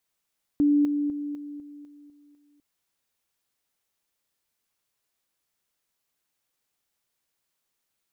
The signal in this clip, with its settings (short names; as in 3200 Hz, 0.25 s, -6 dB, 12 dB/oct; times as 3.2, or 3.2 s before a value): level ladder 291 Hz -17 dBFS, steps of -6 dB, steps 8, 0.25 s 0.00 s